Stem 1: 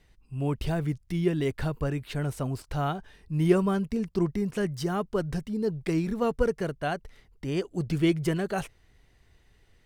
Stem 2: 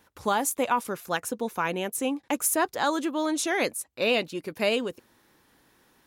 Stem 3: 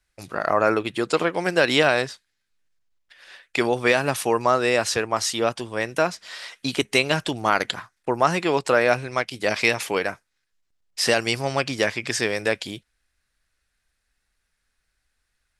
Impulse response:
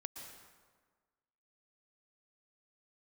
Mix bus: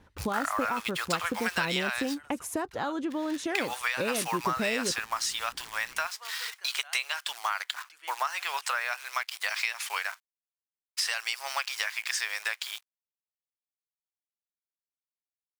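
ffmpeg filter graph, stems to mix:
-filter_complex "[0:a]volume=-10dB[a];[1:a]aemphasis=mode=reproduction:type=bsi,acompressor=threshold=-29dB:ratio=6,volume=0.5dB[b];[2:a]acrusher=bits=7:dc=4:mix=0:aa=0.000001,volume=1.5dB[c];[a][c]amix=inputs=2:normalize=0,highpass=f=980:w=0.5412,highpass=f=980:w=1.3066,acompressor=threshold=-27dB:ratio=6,volume=0dB[d];[b][d]amix=inputs=2:normalize=0"

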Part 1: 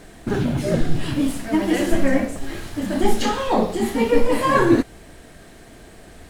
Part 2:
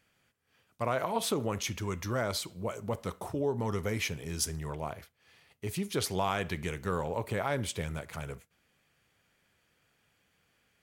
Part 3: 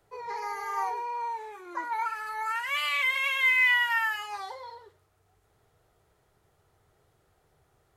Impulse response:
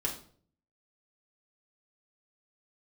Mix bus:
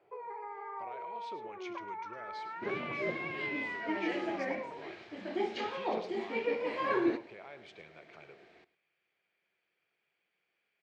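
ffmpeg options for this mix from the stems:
-filter_complex "[0:a]adelay=2350,volume=-15.5dB,asplit=2[a][b];[b]volume=-18.5dB[c];[1:a]alimiter=level_in=1.5dB:limit=-24dB:level=0:latency=1:release=461,volume=-1.5dB,volume=-12.5dB,asplit=2[d][e];[e]volume=-13dB[f];[2:a]lowpass=1.1k,acompressor=threshold=-44dB:ratio=4,volume=1dB[g];[c][f]amix=inputs=2:normalize=0,aecho=0:1:105:1[h];[a][d][g][h]amix=inputs=4:normalize=0,highpass=250,equalizer=f=260:t=q:w=4:g=-7,equalizer=f=370:t=q:w=4:g=7,equalizer=f=690:t=q:w=4:g=3,equalizer=f=2.3k:t=q:w=4:g=9,lowpass=f=4.7k:w=0.5412,lowpass=f=4.7k:w=1.3066"

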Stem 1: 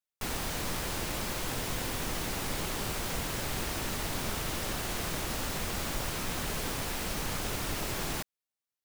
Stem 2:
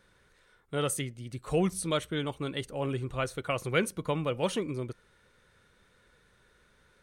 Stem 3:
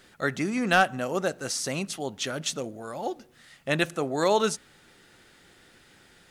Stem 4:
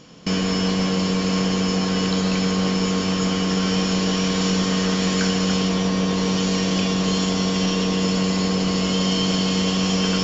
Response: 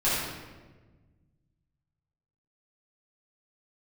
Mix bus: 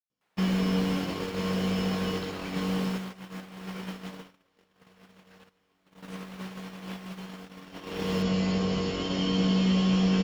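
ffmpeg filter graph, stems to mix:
-filter_complex "[0:a]highpass=560,volume=0.5dB[a];[1:a]volume=-17.5dB,asplit=2[b][c];[2:a]aderivative,adelay=1600,volume=-7dB[d];[3:a]flanger=delay=15.5:depth=4.3:speed=0.3,adelay=100,volume=6dB,afade=t=out:st=2.34:d=0.78:silence=0.446684,afade=t=in:st=7.5:d=0.7:silence=0.375837[e];[c]apad=whole_len=348446[f];[d][f]sidechaincompress=threshold=-58dB:ratio=8:attack=16:release=179[g];[a][b][g][e]amix=inputs=4:normalize=0,acrossover=split=3600[h][i];[i]acompressor=threshold=-49dB:ratio=4:attack=1:release=60[j];[h][j]amix=inputs=2:normalize=0,agate=range=-37dB:threshold=-29dB:ratio=16:detection=peak,acrossover=split=470|3000[k][l][m];[l]acompressor=threshold=-39dB:ratio=2[n];[k][n][m]amix=inputs=3:normalize=0"

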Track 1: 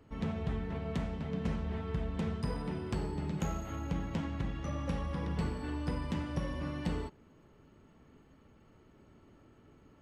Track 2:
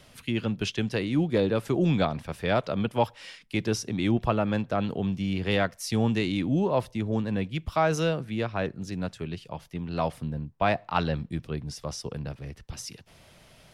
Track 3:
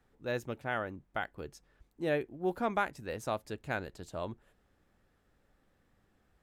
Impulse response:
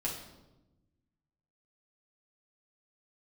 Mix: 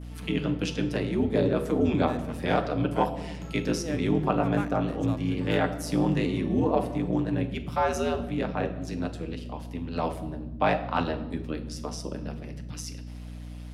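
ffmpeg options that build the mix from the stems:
-filter_complex "[0:a]volume=-11dB,asplit=2[a][b];[b]volume=-5.5dB[c];[1:a]aeval=exprs='val(0)*sin(2*PI*79*n/s)':c=same,volume=-1dB,asplit=2[d][e];[e]volume=-4.5dB[f];[2:a]equalizer=f=6.8k:t=o:w=1.9:g=13,adynamicsmooth=sensitivity=7:basefreq=2k,adelay=1800,volume=-5.5dB[g];[3:a]atrim=start_sample=2205[h];[c][f]amix=inputs=2:normalize=0[i];[i][h]afir=irnorm=-1:irlink=0[j];[a][d][g][j]amix=inputs=4:normalize=0,highpass=120,adynamicequalizer=threshold=0.00447:dfrequency=3900:dqfactor=0.72:tfrequency=3900:tqfactor=0.72:attack=5:release=100:ratio=0.375:range=3:mode=cutabove:tftype=bell,aeval=exprs='val(0)+0.0126*(sin(2*PI*60*n/s)+sin(2*PI*2*60*n/s)/2+sin(2*PI*3*60*n/s)/3+sin(2*PI*4*60*n/s)/4+sin(2*PI*5*60*n/s)/5)':c=same"

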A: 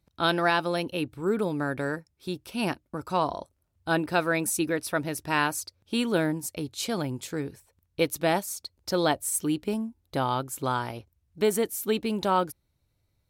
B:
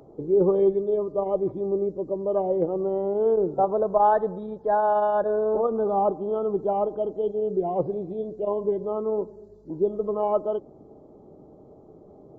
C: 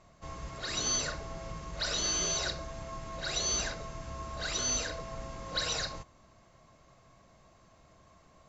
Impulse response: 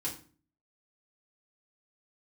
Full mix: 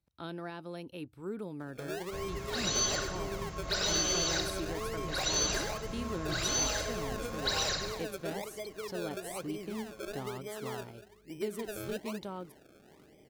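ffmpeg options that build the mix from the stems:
-filter_complex "[0:a]acrossover=split=430[a][b];[b]acompressor=threshold=-36dB:ratio=2.5[c];[a][c]amix=inputs=2:normalize=0,volume=-11.5dB[d];[1:a]acompressor=threshold=-28dB:ratio=6,acrusher=samples=31:mix=1:aa=0.000001:lfo=1:lforange=31:lforate=1.1,adelay=1600,volume=-10dB[e];[2:a]adelay=1900,volume=0.5dB,asplit=2[f][g];[g]volume=-7.5dB,aecho=0:1:99|198|297|396|495|594:1|0.46|0.212|0.0973|0.0448|0.0206[h];[d][e][f][h]amix=inputs=4:normalize=0"

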